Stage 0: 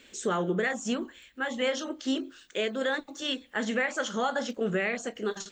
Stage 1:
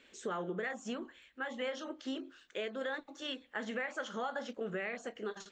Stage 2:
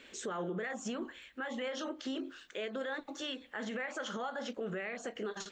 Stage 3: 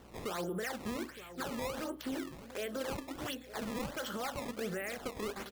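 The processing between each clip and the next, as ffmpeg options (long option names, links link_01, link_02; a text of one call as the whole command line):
ffmpeg -i in.wav -af "lowpass=frequency=2000:poles=1,lowshelf=frequency=370:gain=-8.5,acompressor=threshold=-34dB:ratio=2,volume=-2.5dB" out.wav
ffmpeg -i in.wav -af "alimiter=level_in=13dB:limit=-24dB:level=0:latency=1:release=122,volume=-13dB,volume=7dB" out.wav
ffmpeg -i in.wav -filter_complex "[0:a]asplit=2[link_01][link_02];[link_02]adelay=914,lowpass=frequency=1600:poles=1,volume=-13dB,asplit=2[link_03][link_04];[link_04]adelay=914,lowpass=frequency=1600:poles=1,volume=0.53,asplit=2[link_05][link_06];[link_06]adelay=914,lowpass=frequency=1600:poles=1,volume=0.53,asplit=2[link_07][link_08];[link_08]adelay=914,lowpass=frequency=1600:poles=1,volume=0.53,asplit=2[link_09][link_10];[link_10]adelay=914,lowpass=frequency=1600:poles=1,volume=0.53[link_11];[link_01][link_03][link_05][link_07][link_09][link_11]amix=inputs=6:normalize=0,aeval=exprs='val(0)+0.000891*(sin(2*PI*60*n/s)+sin(2*PI*2*60*n/s)/2+sin(2*PI*3*60*n/s)/3+sin(2*PI*4*60*n/s)/4+sin(2*PI*5*60*n/s)/5)':channel_layout=same,acrusher=samples=17:mix=1:aa=0.000001:lfo=1:lforange=27.2:lforate=1.4" out.wav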